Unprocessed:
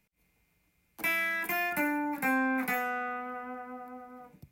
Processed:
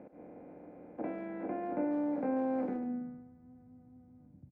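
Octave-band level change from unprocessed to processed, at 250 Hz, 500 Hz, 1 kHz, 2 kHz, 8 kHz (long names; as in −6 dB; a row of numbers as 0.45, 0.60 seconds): 0.0 dB, +1.5 dB, −9.0 dB, −24.0 dB, below −30 dB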